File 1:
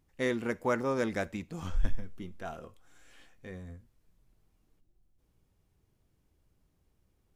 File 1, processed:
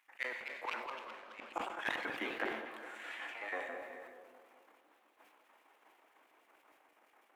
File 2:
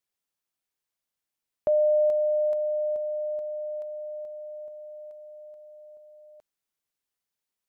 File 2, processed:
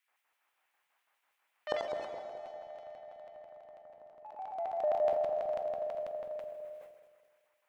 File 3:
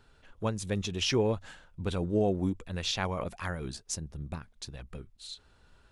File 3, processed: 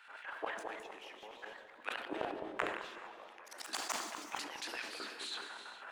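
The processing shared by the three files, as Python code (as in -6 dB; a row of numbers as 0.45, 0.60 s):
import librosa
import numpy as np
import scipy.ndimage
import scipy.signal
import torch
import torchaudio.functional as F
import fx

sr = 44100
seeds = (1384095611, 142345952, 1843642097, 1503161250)

p1 = fx.tracing_dist(x, sr, depth_ms=0.036)
p2 = fx.high_shelf_res(p1, sr, hz=3100.0, db=-12.5, q=1.5)
p3 = fx.transient(p2, sr, attack_db=-9, sustain_db=6)
p4 = scipy.signal.sosfilt(scipy.signal.cheby1(6, 6, 210.0, 'highpass', fs=sr, output='sos'), p3)
p5 = 10.0 ** (-36.0 / 20.0) * np.tanh(p4 / 10.0 ** (-36.0 / 20.0))
p6 = p4 + F.gain(torch.from_numpy(p5), -4.0).numpy()
p7 = fx.filter_lfo_highpass(p6, sr, shape='square', hz=6.1, low_hz=770.0, high_hz=2600.0, q=0.89)
p8 = fx.gate_flip(p7, sr, shuts_db=-39.0, range_db=-31)
p9 = p8 + fx.echo_wet_lowpass(p8, sr, ms=210, feedback_pct=45, hz=640.0, wet_db=-4, dry=0)
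p10 = fx.echo_pitch(p9, sr, ms=276, semitones=2, count=3, db_per_echo=-6.0)
p11 = fx.rev_gated(p10, sr, seeds[0], gate_ms=480, shape='flat', drr_db=8.0)
p12 = fx.sustainer(p11, sr, db_per_s=55.0)
y = F.gain(torch.from_numpy(p12), 15.0).numpy()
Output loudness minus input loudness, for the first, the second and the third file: -7.0, -9.5, -10.0 LU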